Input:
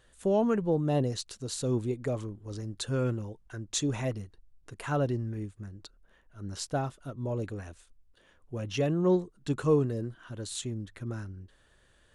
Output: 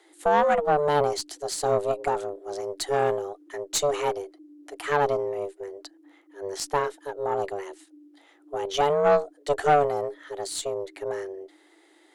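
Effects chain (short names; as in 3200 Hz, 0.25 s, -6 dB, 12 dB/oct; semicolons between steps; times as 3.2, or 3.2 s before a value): frequency shift +290 Hz; tube stage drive 20 dB, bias 0.7; gain +9 dB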